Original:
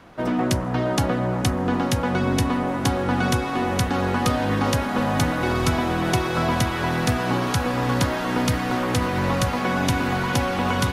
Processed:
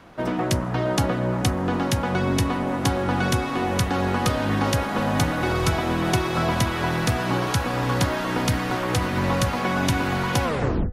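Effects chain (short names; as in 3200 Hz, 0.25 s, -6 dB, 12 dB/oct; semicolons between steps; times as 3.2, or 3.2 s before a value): tape stop at the end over 0.49 s; de-hum 247.8 Hz, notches 8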